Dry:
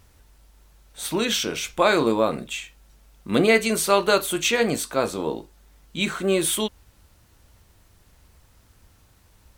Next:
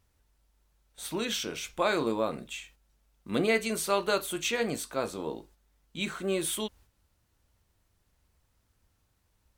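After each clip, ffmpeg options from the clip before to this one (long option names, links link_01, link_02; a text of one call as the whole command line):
ffmpeg -i in.wav -af "agate=range=-7dB:threshold=-47dB:ratio=16:detection=peak,volume=-8.5dB" out.wav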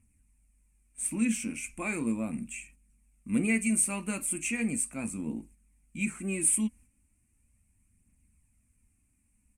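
ffmpeg -i in.wav -af "firequalizer=gain_entry='entry(150,0);entry(230,10);entry(400,-14);entry(1100,-12);entry(1500,-13);entry(2400,4);entry(3500,-25);entry(8700,12);entry(15000,-16)':delay=0.05:min_phase=1,aphaser=in_gain=1:out_gain=1:delay=4.2:decay=0.34:speed=0.37:type=triangular" out.wav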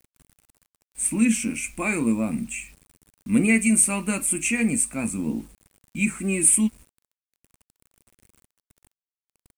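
ffmpeg -i in.wav -af "acrusher=bits=9:mix=0:aa=0.000001,volume=8dB" out.wav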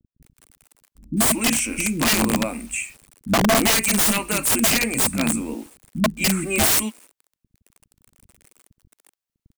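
ffmpeg -i in.wav -filter_complex "[0:a]acrossover=split=300[link_01][link_02];[link_02]adelay=220[link_03];[link_01][link_03]amix=inputs=2:normalize=0,aeval=exprs='(mod(8.41*val(0)+1,2)-1)/8.41':channel_layout=same,volume=6dB" out.wav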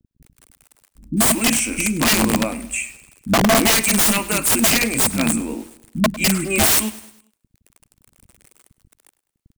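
ffmpeg -i in.wav -af "aecho=1:1:102|204|306|408:0.126|0.0579|0.0266|0.0123,volume=2.5dB" out.wav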